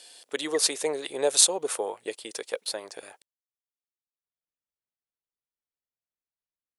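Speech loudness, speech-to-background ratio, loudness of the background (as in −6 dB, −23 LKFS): −25.5 LKFS, 18.0 dB, −43.5 LKFS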